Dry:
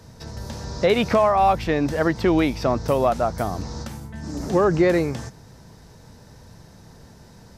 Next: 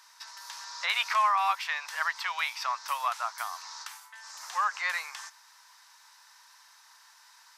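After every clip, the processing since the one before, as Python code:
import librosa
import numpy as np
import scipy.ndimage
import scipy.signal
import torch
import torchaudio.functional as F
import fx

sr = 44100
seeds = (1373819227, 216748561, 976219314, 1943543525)

y = scipy.signal.sosfilt(scipy.signal.ellip(4, 1.0, 70, 990.0, 'highpass', fs=sr, output='sos'), x)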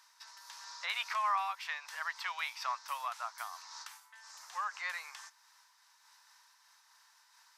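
y = fx.am_noise(x, sr, seeds[0], hz=5.7, depth_pct=60)
y = y * 10.0 ** (-4.0 / 20.0)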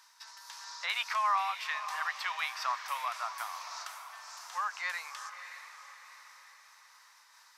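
y = fx.echo_diffused(x, sr, ms=609, feedback_pct=46, wet_db=-10)
y = y * 10.0 ** (3.0 / 20.0)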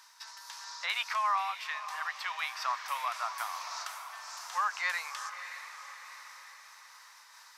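y = fx.rider(x, sr, range_db=5, speed_s=2.0)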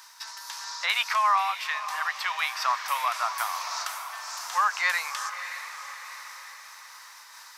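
y = fx.high_shelf(x, sr, hz=12000.0, db=6.5)
y = y * 10.0 ** (7.0 / 20.0)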